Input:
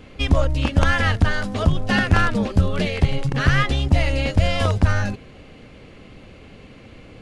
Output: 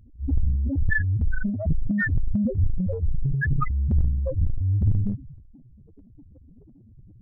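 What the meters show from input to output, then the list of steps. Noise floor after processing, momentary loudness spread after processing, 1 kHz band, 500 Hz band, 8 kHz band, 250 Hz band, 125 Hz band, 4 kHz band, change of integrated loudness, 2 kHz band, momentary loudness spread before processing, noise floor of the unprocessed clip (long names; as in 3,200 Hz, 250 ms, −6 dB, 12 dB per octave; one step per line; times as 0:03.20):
−51 dBFS, 4 LU, −14.5 dB, −11.0 dB, below −40 dB, −4.0 dB, −4.0 dB, below −40 dB, −5.0 dB, −7.0 dB, 3 LU, −44 dBFS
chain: spectral peaks only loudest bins 2
transient designer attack −6 dB, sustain +10 dB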